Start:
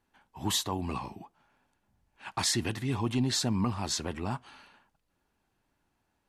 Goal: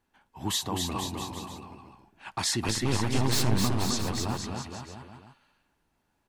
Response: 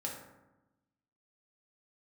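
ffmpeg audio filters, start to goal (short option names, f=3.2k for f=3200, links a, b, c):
-filter_complex "[0:a]asettb=1/sr,asplit=3[a][b][c];[a]atrim=end=2.684[d];[b]atrim=start=2.68:end=3.58,asetpts=PTS-STARTPTS,afade=t=in:d=0.004:c=qsin,afade=t=out:st=0.896:d=0.004:c=qsin,aeval=exprs='0.126*(cos(1*acos(clip(val(0)/0.126,-1,1)))-cos(1*PI/2))+0.0316*(cos(6*acos(clip(val(0)/0.126,-1,1)))-cos(6*PI/2))':c=same[e];[c]atrim=start=3.576[f];[d][e]acrossfade=d=0.004:c1=hsin:c2=qsin[g];[g][f]acrossfade=d=0.004:c1=qsin:c2=hsin,aecho=1:1:260|481|668.8|828.5|964.2:0.631|0.398|0.251|0.158|0.1"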